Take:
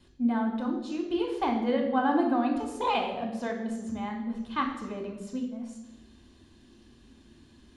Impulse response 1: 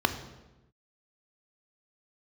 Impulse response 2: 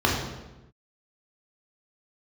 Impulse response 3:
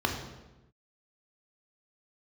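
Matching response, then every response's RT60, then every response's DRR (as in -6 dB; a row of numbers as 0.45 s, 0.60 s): 3; 1.0 s, 1.0 s, 1.0 s; 8.5 dB, -2.5 dB, 2.0 dB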